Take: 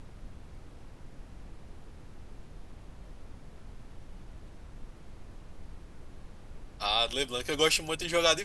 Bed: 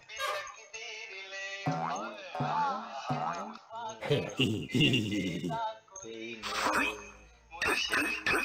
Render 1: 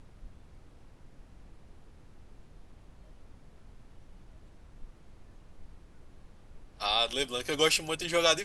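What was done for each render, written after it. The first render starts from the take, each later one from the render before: noise print and reduce 6 dB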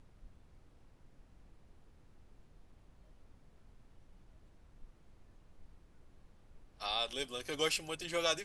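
gain -8 dB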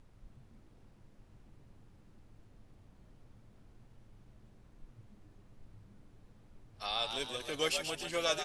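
frequency-shifting echo 0.135 s, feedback 46%, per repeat +96 Hz, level -7 dB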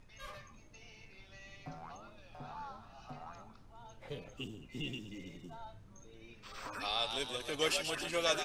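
add bed -15.5 dB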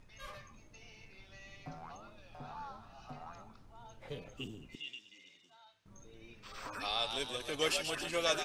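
4.75–5.86 band-pass 3700 Hz, Q 1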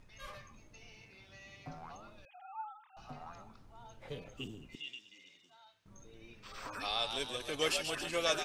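1.01–1.68 HPF 57 Hz; 2.25–2.97 sine-wave speech

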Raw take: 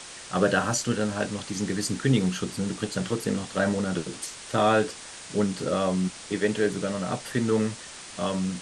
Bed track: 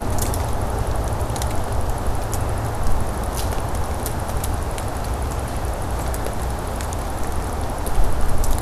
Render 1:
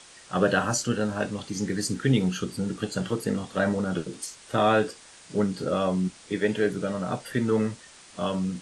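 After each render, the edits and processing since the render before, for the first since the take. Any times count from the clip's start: noise print and reduce 8 dB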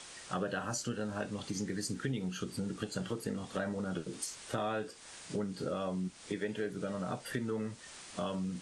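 compressor 4:1, threshold -35 dBFS, peak gain reduction 15.5 dB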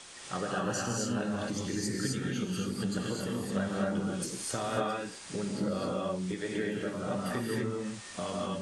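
non-linear reverb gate 0.28 s rising, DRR -3 dB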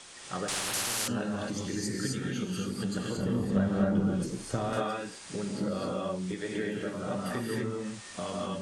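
0.48–1.08 spectral compressor 10:1; 3.17–4.73 tilt -2.5 dB/oct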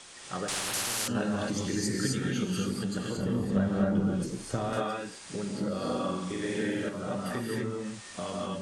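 1.15–2.79 gain +3 dB; 5.8–6.89 flutter echo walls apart 7.8 m, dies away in 1.1 s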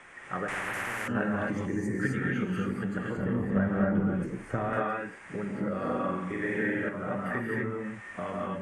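1.65–2.01 spectral gain 1200–5400 Hz -8 dB; resonant high shelf 2900 Hz -14 dB, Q 3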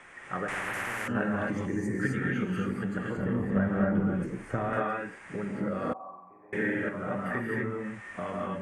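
5.93–6.53 vocal tract filter a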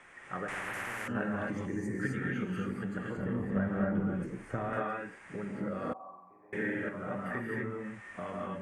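gain -4.5 dB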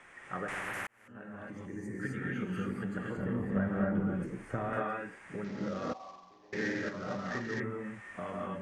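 0.87–2.66 fade in; 5.44–7.6 CVSD 32 kbps

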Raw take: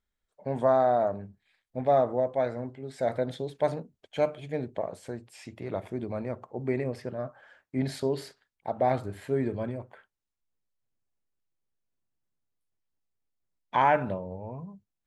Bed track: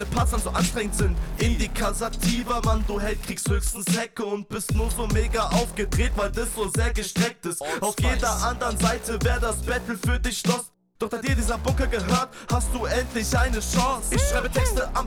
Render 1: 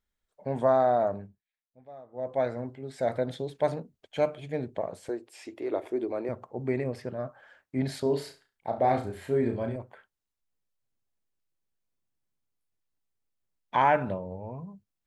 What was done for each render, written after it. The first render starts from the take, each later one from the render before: 1.17–2.37 dip -24 dB, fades 0.25 s; 5.09–6.29 resonant low shelf 230 Hz -12.5 dB, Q 3; 8.02–9.76 flutter echo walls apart 5.9 m, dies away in 0.29 s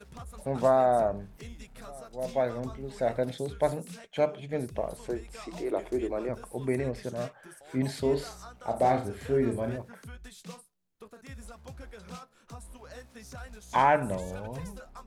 add bed track -22 dB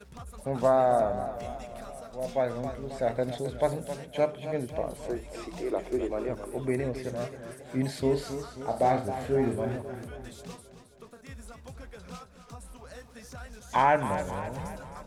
warbling echo 0.267 s, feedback 55%, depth 82 cents, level -11 dB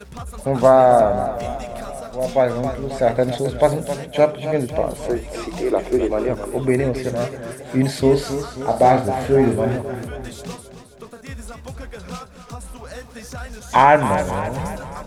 gain +11 dB; limiter -1 dBFS, peak gain reduction 1 dB

